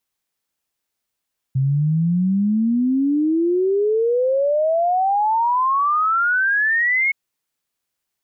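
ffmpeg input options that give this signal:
-f lavfi -i "aevalsrc='0.178*clip(min(t,5.57-t)/0.01,0,1)*sin(2*PI*130*5.57/log(2200/130)*(exp(log(2200/130)*t/5.57)-1))':d=5.57:s=44100"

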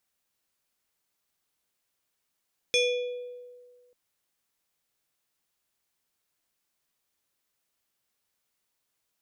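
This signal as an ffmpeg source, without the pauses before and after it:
-f lavfi -i "aevalsrc='0.112*pow(10,-3*t/1.71)*sin(2*PI*492*t+1.6*pow(10,-3*t/1.17)*sin(2*PI*5.95*492*t))':d=1.19:s=44100"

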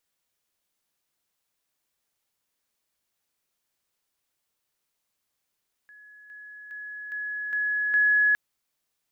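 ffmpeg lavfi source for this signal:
-f lavfi -i "aevalsrc='pow(10,(-47.5+6*floor(t/0.41))/20)*sin(2*PI*1690*t)':d=2.46:s=44100"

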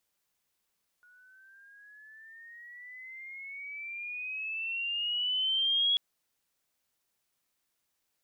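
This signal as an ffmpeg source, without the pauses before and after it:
-f lavfi -i "aevalsrc='pow(10,(-23+34*(t/4.94-1))/20)*sin(2*PI*1450*4.94/(14.5*log(2)/12)*(exp(14.5*log(2)/12*t/4.94)-1))':d=4.94:s=44100"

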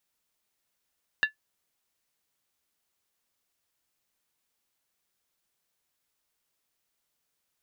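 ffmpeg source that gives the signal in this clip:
-f lavfi -i "aevalsrc='0.158*pow(10,-3*t/0.12)*sin(2*PI*1730*t)+0.0708*pow(10,-3*t/0.095)*sin(2*PI*2757.6*t)+0.0316*pow(10,-3*t/0.082)*sin(2*PI*3695.3*t)+0.0141*pow(10,-3*t/0.079)*sin(2*PI*3972.1*t)+0.00631*pow(10,-3*t/0.074)*sin(2*PI*4589.7*t)':d=0.63:s=44100"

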